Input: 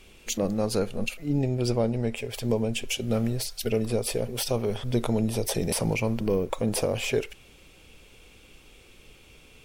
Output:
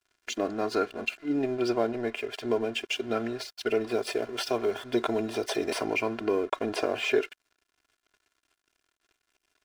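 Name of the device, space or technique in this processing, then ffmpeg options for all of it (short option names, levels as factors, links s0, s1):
pocket radio on a weak battery: -filter_complex "[0:a]highpass=280,lowpass=4000,aeval=exprs='sgn(val(0))*max(abs(val(0))-0.00316,0)':c=same,equalizer=f=1500:t=o:w=0.39:g=9,aecho=1:1:2.9:0.77,asettb=1/sr,asplit=3[s0][s1][s2];[s0]atrim=end=3.914[s3];[s1]atrim=start=3.91:end=5.85,asetpts=PTS-STARTPTS,afade=t=in:d=0.004:c=qsin,afade=t=out:st=1.936:d=0.004:c=qsin,highshelf=f=7100:g=5.5[s4];[s2]atrim=start=5.846[s5];[s3][s4]acrossfade=d=0.004:c1=hsin:c2=qsin[s6];[s6][s5]acrossfade=d=0.004:c1=qsin:c2=hsin"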